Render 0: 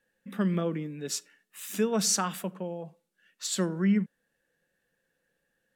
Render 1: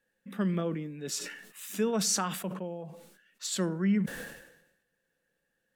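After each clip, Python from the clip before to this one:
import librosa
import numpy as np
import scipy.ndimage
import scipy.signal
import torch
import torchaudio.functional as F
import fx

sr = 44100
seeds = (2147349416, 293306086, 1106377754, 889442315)

y = fx.sustainer(x, sr, db_per_s=63.0)
y = y * 10.0 ** (-2.5 / 20.0)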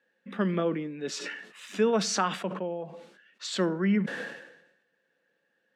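y = fx.bandpass_edges(x, sr, low_hz=240.0, high_hz=3900.0)
y = y * 10.0 ** (6.0 / 20.0)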